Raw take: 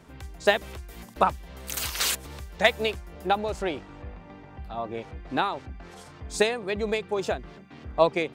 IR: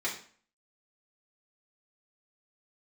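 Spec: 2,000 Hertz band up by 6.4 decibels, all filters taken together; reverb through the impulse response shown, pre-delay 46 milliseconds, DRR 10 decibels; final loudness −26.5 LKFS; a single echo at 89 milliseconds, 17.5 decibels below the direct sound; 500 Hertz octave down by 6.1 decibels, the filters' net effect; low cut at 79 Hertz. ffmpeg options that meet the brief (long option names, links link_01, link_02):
-filter_complex "[0:a]highpass=79,equalizer=frequency=500:width_type=o:gain=-9,equalizer=frequency=2000:width_type=o:gain=8,aecho=1:1:89:0.133,asplit=2[link_01][link_02];[1:a]atrim=start_sample=2205,adelay=46[link_03];[link_02][link_03]afir=irnorm=-1:irlink=0,volume=-16.5dB[link_04];[link_01][link_04]amix=inputs=2:normalize=0,volume=-1dB"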